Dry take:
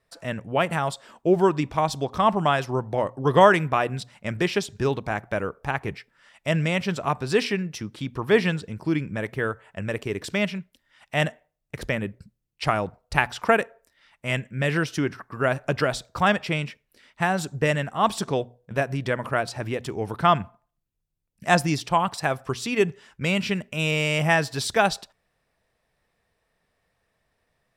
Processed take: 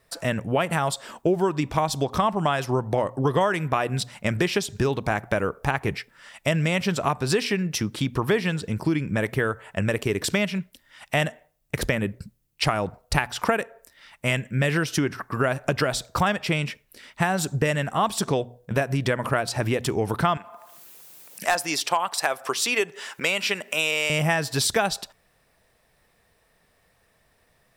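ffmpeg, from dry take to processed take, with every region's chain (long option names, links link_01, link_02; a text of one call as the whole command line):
ffmpeg -i in.wav -filter_complex "[0:a]asettb=1/sr,asplit=3[link_01][link_02][link_03];[link_01]atrim=end=20.374[link_04];[link_02]atrim=start=20.37:end=24.1,asetpts=PTS-STARTPTS,afade=type=in:duration=0.004:curve=qsin,afade=type=out:start_time=3.726:duration=0.004:curve=qsin,highpass=500,acompressor=mode=upward:threshold=-35dB:ratio=2.5:attack=3.2:release=140:knee=2.83:detection=peak,asoftclip=type=hard:threshold=-10.5dB[link_05];[link_03]atrim=start=24.096[link_06];[link_04][link_05]acrossfade=duration=0.004:curve1=hsin:curve2=qsin[link_07];[link_07][link_06]acrossfade=duration=0.004:curve1=qsin:curve2=hsin,highshelf=frequency=8700:gain=9,acompressor=threshold=-28dB:ratio=5,volume=8dB" out.wav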